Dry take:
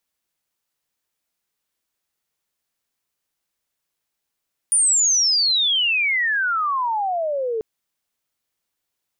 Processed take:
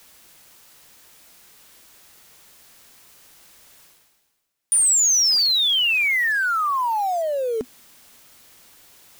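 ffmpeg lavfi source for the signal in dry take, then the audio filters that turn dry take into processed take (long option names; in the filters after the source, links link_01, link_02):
-f lavfi -i "aevalsrc='pow(10,(-13.5-7.5*t/2.89)/20)*sin(2*PI*9600*2.89/log(430/9600)*(exp(log(430/9600)*t/2.89)-1))':duration=2.89:sample_rate=44100"
-af "adynamicequalizer=threshold=0.002:dfrequency=250:dqfactor=3.6:tfrequency=250:tqfactor=3.6:attack=5:release=100:ratio=0.375:range=4:mode=boostabove:tftype=bell,areverse,acompressor=mode=upward:threshold=-27dB:ratio=2.5,areverse,acrusher=bits=5:mode=log:mix=0:aa=0.000001"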